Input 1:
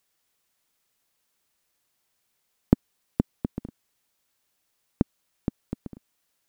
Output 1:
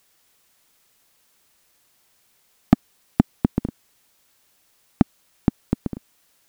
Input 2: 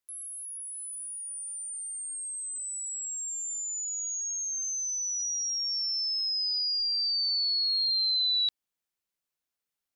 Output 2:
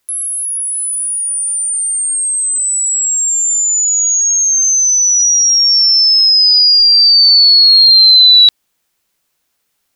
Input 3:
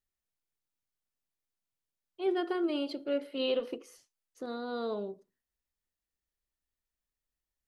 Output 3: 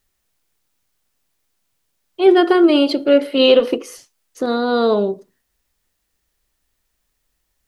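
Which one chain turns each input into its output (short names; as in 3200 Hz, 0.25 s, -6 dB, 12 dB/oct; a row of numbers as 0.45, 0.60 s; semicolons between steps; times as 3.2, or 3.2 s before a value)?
soft clip -14 dBFS; normalise peaks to -2 dBFS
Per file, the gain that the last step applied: +12.0, +21.5, +19.0 dB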